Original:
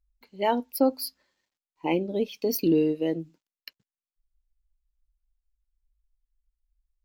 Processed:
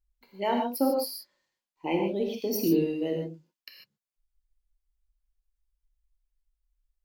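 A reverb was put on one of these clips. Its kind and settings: non-linear reverb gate 0.17 s flat, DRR 0.5 dB; gain -4 dB

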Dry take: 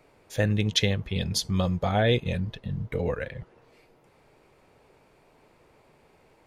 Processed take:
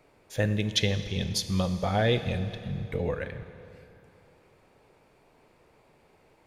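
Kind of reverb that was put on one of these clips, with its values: Schroeder reverb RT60 2.8 s, combs from 28 ms, DRR 10.5 dB; gain -2 dB

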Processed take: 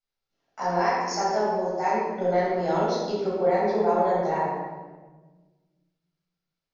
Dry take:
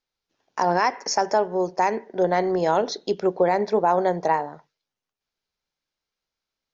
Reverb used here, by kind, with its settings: shoebox room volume 1000 m³, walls mixed, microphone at 7.1 m; gain -15.5 dB

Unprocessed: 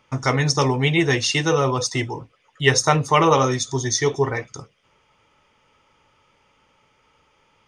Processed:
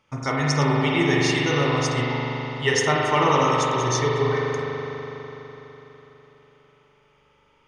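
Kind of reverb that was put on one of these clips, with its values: spring tank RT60 4 s, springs 41 ms, chirp 25 ms, DRR -4 dB; gain -6 dB

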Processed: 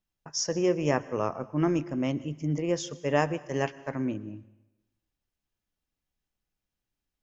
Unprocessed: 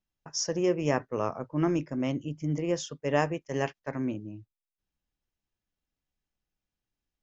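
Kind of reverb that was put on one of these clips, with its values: plate-style reverb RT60 0.98 s, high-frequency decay 1×, pre-delay 0.1 s, DRR 18.5 dB; gain +1 dB

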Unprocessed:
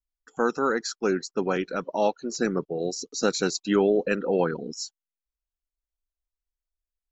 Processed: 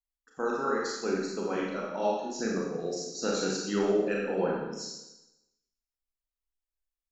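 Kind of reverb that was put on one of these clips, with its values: Schroeder reverb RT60 0.96 s, combs from 28 ms, DRR -3.5 dB; gain -9.5 dB

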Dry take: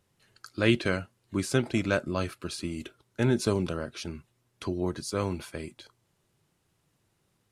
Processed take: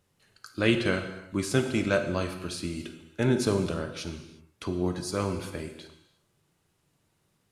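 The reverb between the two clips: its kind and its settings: non-linear reverb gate 0.39 s falling, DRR 5.5 dB

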